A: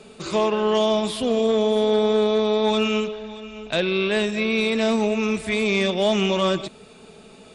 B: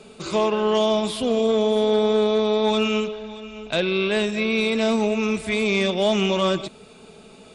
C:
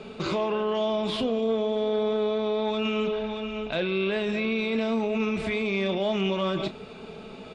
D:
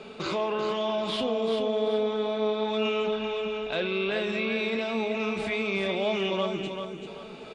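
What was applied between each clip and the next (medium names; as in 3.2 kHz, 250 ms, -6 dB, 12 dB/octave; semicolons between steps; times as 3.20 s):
band-stop 1.8 kHz, Q 15
low-pass 3.5 kHz 12 dB/octave; peak limiter -24 dBFS, peak gain reduction 12 dB; doubling 31 ms -12.5 dB; trim +4.5 dB
time-frequency box 6.46–7.07 s, 500–5600 Hz -12 dB; bass shelf 230 Hz -9 dB; feedback delay 387 ms, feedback 32%, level -6.5 dB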